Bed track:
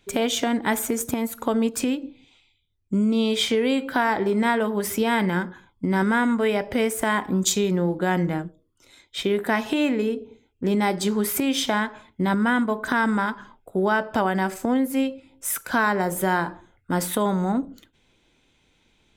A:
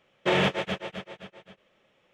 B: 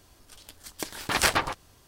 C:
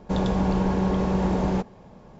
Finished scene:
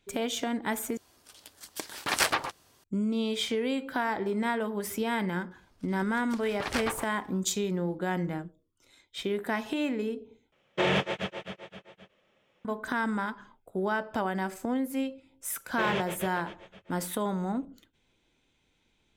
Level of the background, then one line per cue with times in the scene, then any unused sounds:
bed track -8 dB
0.97 s: replace with B -2.5 dB + high-pass 240 Hz 6 dB/octave
5.51 s: add B -8 dB + treble shelf 6.5 kHz -12 dB
10.52 s: replace with A -2.5 dB
15.52 s: add A -8.5 dB
not used: C

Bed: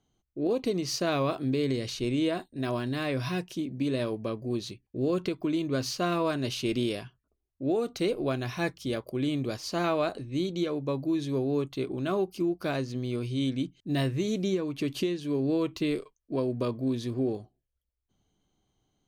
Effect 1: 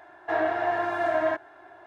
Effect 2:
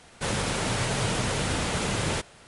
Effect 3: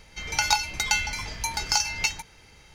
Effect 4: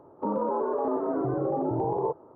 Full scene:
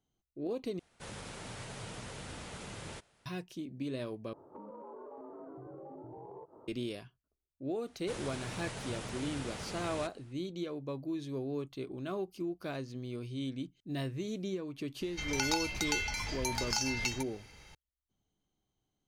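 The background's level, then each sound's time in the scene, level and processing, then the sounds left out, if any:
bed -9 dB
0.79 s: replace with 2 -17.5 dB
4.33 s: replace with 4 -4.5 dB + compression, threshold -42 dBFS
7.86 s: add 2 -15 dB
15.01 s: add 3 -3 dB + compression 2:1, threshold -30 dBFS
not used: 1

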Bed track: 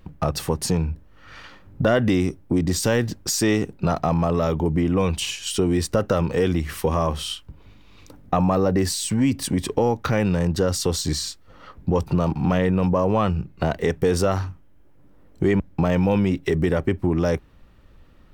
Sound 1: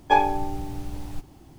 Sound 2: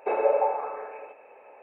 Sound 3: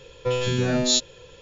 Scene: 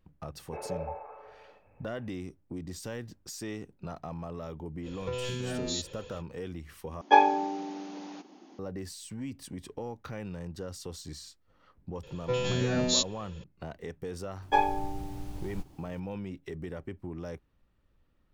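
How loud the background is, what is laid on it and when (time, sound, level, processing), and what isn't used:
bed track -18.5 dB
0.46 s: add 2 -14.5 dB
4.82 s: add 3 -2 dB, fades 0.05 s + compression, threshold -29 dBFS
7.01 s: replace with 1 -0.5 dB + brick-wall FIR band-pass 190–6900 Hz
12.03 s: add 3 -5.5 dB
14.42 s: add 1 -6 dB

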